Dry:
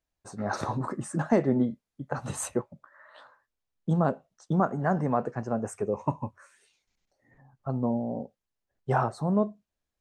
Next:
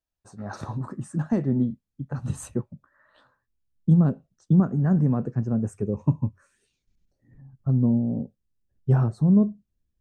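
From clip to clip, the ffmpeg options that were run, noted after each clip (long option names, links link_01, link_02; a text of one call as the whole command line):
ffmpeg -i in.wav -af "bandreject=frequency=2100:width=13,asubboost=boost=9.5:cutoff=250,volume=-6dB" out.wav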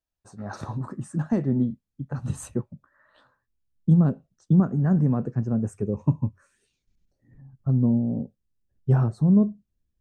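ffmpeg -i in.wav -af anull out.wav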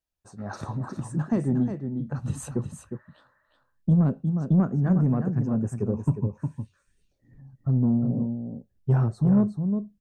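ffmpeg -i in.wav -af "aecho=1:1:359:0.398,asoftclip=type=tanh:threshold=-13dB" out.wav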